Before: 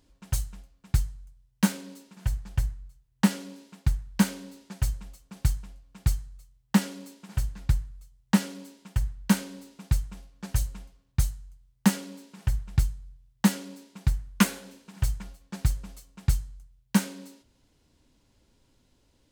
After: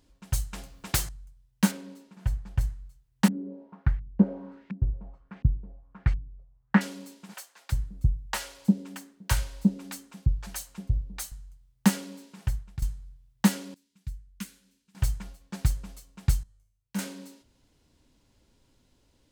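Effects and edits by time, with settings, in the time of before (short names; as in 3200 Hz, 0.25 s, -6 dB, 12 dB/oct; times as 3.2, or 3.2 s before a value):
0.53–1.09 spectral compressor 2:1
1.71–2.61 high shelf 2800 Hz -9 dB
3.28–6.81 LFO low-pass saw up 1.4 Hz 210–2400 Hz
7.34–11.32 bands offset in time highs, lows 0.35 s, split 500 Hz
12.37–12.82 fade out linear, to -16 dB
13.74–14.95 passive tone stack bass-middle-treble 6-0-2
16.43–16.99 resonator 98 Hz, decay 0.65 s, mix 90%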